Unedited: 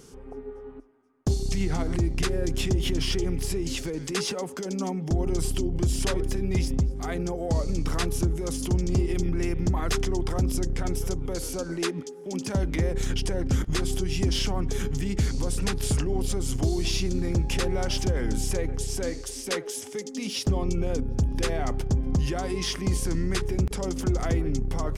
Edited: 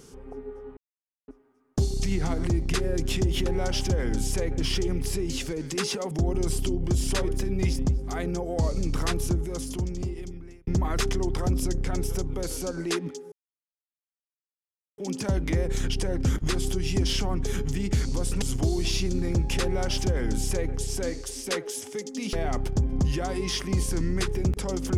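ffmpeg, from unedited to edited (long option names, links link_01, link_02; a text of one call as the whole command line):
ffmpeg -i in.wav -filter_complex "[0:a]asplit=9[link_01][link_02][link_03][link_04][link_05][link_06][link_07][link_08][link_09];[link_01]atrim=end=0.77,asetpts=PTS-STARTPTS,afade=type=out:start_time=0.766:duration=0.004:curve=hsin,apad=pad_dur=0.51[link_10];[link_02]atrim=start=0.77:end=2.952,asetpts=PTS-STARTPTS,afade=type=in:duration=0.004:curve=hsin[link_11];[link_03]atrim=start=17.628:end=18.752[link_12];[link_04]atrim=start=2.948:end=4.482[link_13];[link_05]atrim=start=5.028:end=9.59,asetpts=PTS-STARTPTS,afade=type=out:start_time=3.082:duration=1.48[link_14];[link_06]atrim=start=9.59:end=12.24,asetpts=PTS-STARTPTS,afade=type=in:duration=0.004:curve=hsin,afade=type=out:start_time=2.646:duration=0.004:curve=hsin,apad=pad_dur=1.66[link_15];[link_07]atrim=start=12.24:end=15.682,asetpts=PTS-STARTPTS,afade=type=in:duration=0.004:curve=hsin[link_16];[link_08]atrim=start=16.418:end=20.332[link_17];[link_09]atrim=start=21.468[link_18];[link_10][link_11]concat=n=2:v=0:a=1[link_19];[link_19][link_12]acrossfade=duration=0.004:curve1=hsin:curve2=hsin[link_20];[link_20][link_13]acrossfade=duration=0.004:curve1=hsin:curve2=hsin[link_21];[link_14][link_15][link_16]concat=n=3:v=0:a=1[link_22];[link_21][link_22]acrossfade=duration=0.004:curve1=hsin:curve2=hsin[link_23];[link_23][link_17]acrossfade=duration=0.004:curve1=hsin:curve2=hsin[link_24];[link_24][link_18]acrossfade=duration=0.004:curve1=hsin:curve2=hsin" out.wav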